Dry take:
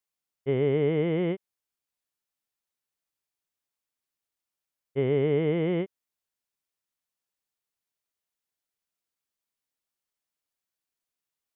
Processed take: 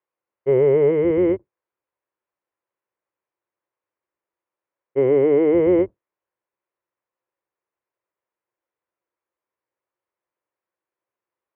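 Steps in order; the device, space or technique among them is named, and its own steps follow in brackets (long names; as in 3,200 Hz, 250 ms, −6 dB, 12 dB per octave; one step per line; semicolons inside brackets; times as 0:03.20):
sub-octave bass pedal (sub-octave generator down 1 octave, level −4 dB; loudspeaker in its box 77–2,200 Hz, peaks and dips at 83 Hz −9 dB, 160 Hz −10 dB, 250 Hz −7 dB, 350 Hz +9 dB, 530 Hz +9 dB, 1,000 Hz +7 dB)
0:00.91–0:01.34: parametric band 690 Hz −5.5 dB 1 octave
level +4.5 dB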